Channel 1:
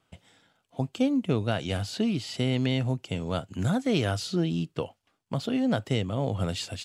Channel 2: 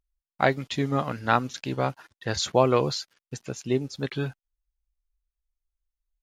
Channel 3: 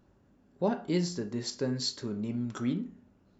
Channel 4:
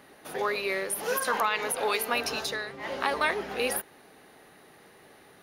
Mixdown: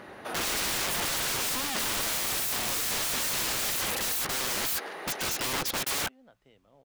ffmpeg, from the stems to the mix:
ffmpeg -i stem1.wav -i stem2.wav -i stem3.wav -i stem4.wav -filter_complex "[0:a]bandreject=frequency=60.79:width_type=h:width=4,bandreject=frequency=121.58:width_type=h:width=4,bandreject=frequency=182.37:width_type=h:width=4,adelay=550,volume=-2.5dB[link_01];[1:a]adelay=1750,volume=-4.5dB[link_02];[2:a]acompressor=threshold=-55dB:ratio=1.5,volume=-6dB,asplit=2[link_03][link_04];[3:a]highpass=frequency=250:width=0.5412,highpass=frequency=250:width=1.3066,volume=-10dB,afade=type=in:start_time=1.95:duration=0.27:silence=0.375837,asplit=2[link_05][link_06];[link_06]volume=-9.5dB[link_07];[link_04]apad=whole_len=326048[link_08];[link_01][link_08]sidechaingate=range=-52dB:threshold=-59dB:ratio=16:detection=peak[link_09];[link_07]aecho=0:1:143|286|429|572:1|0.31|0.0961|0.0298[link_10];[link_09][link_02][link_03][link_05][link_10]amix=inputs=5:normalize=0,asplit=2[link_11][link_12];[link_12]highpass=frequency=720:poles=1,volume=36dB,asoftclip=type=tanh:threshold=-7.5dB[link_13];[link_11][link_13]amix=inputs=2:normalize=0,lowpass=frequency=1500:poles=1,volume=-6dB,aeval=exprs='(mod(17.8*val(0)+1,2)-1)/17.8':channel_layout=same" out.wav

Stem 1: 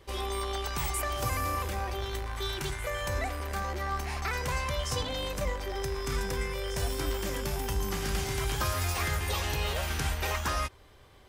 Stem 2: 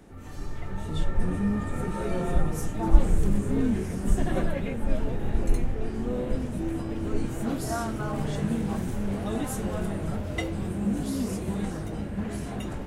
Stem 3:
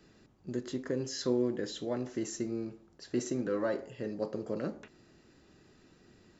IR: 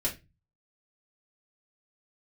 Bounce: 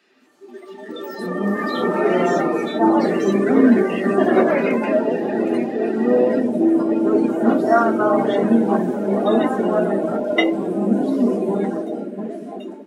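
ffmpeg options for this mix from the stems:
-filter_complex "[0:a]adelay=250,volume=-6dB[link_01];[1:a]acrossover=split=4100[link_02][link_03];[link_03]acompressor=threshold=-50dB:ratio=4:attack=1:release=60[link_04];[link_02][link_04]amix=inputs=2:normalize=0,volume=2dB,asplit=2[link_05][link_06];[link_06]volume=-8dB[link_07];[2:a]equalizer=frequency=2400:width=0.59:gain=14.5,asplit=2[link_08][link_09];[link_09]highpass=frequency=720:poles=1,volume=36dB,asoftclip=type=tanh:threshold=-16.5dB[link_10];[link_08][link_10]amix=inputs=2:normalize=0,lowpass=frequency=4500:poles=1,volume=-6dB,volume=-17.5dB,asplit=4[link_11][link_12][link_13][link_14];[link_12]volume=-7dB[link_15];[link_13]volume=-10dB[link_16];[link_14]apad=whole_len=508891[link_17];[link_01][link_17]sidechaingate=range=-14dB:threshold=-46dB:ratio=16:detection=peak[link_18];[3:a]atrim=start_sample=2205[link_19];[link_07][link_15]amix=inputs=2:normalize=0[link_20];[link_20][link_19]afir=irnorm=-1:irlink=0[link_21];[link_16]aecho=0:1:1183:1[link_22];[link_18][link_05][link_11][link_21][link_22]amix=inputs=5:normalize=0,highpass=frequency=260:width=0.5412,highpass=frequency=260:width=1.3066,dynaudnorm=framelen=440:gausssize=7:maxgain=11.5dB,afftdn=noise_reduction=18:noise_floor=-24"

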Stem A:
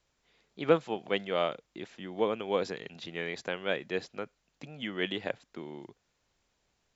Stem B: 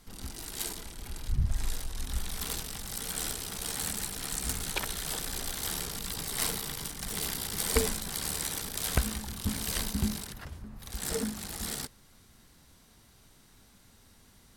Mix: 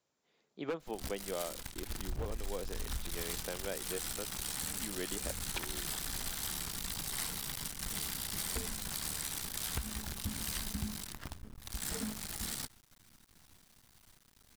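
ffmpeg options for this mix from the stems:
ffmpeg -i stem1.wav -i stem2.wav -filter_complex "[0:a]highpass=160,equalizer=frequency=2500:width=0.56:gain=-6.5,volume=-2.5dB[link_01];[1:a]equalizer=frequency=480:width=1.6:gain=-8,acrusher=bits=7:dc=4:mix=0:aa=0.000001,adelay=800,volume=-1.5dB[link_02];[link_01][link_02]amix=inputs=2:normalize=0,aeval=exprs='0.1*(abs(mod(val(0)/0.1+3,4)-2)-1)':channel_layout=same,acompressor=threshold=-34dB:ratio=6" out.wav

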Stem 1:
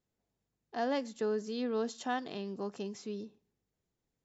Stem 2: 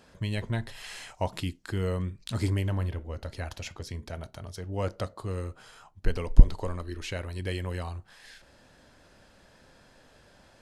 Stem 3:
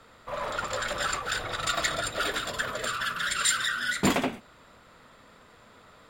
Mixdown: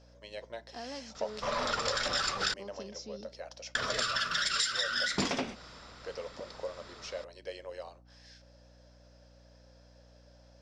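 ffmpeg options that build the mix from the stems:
ffmpeg -i stem1.wav -i stem2.wav -i stem3.wav -filter_complex "[0:a]acompressor=threshold=-37dB:ratio=3,volume=-5dB[link_01];[1:a]highpass=frequency=550:width_type=q:width=4.9,volume=-12.5dB[link_02];[2:a]adelay=1150,volume=1.5dB,asplit=3[link_03][link_04][link_05];[link_03]atrim=end=2.54,asetpts=PTS-STARTPTS,afade=type=out:start_time=2.536:duration=0.004:curve=hsin[link_06];[link_04]atrim=start=2.54:end=3.75,asetpts=PTS-STARTPTS,volume=0[link_07];[link_05]atrim=start=3.75,asetpts=PTS-STARTPTS,afade=type=in:duration=0.004:curve=hsin[link_08];[link_06][link_07][link_08]concat=n=3:v=0:a=1[link_09];[link_01][link_02][link_09]amix=inputs=3:normalize=0,aeval=exprs='val(0)+0.00126*(sin(2*PI*60*n/s)+sin(2*PI*2*60*n/s)/2+sin(2*PI*3*60*n/s)/3+sin(2*PI*4*60*n/s)/4+sin(2*PI*5*60*n/s)/5)':channel_layout=same,lowpass=frequency=5500:width_type=q:width=5.9,acompressor=threshold=-28dB:ratio=6" out.wav

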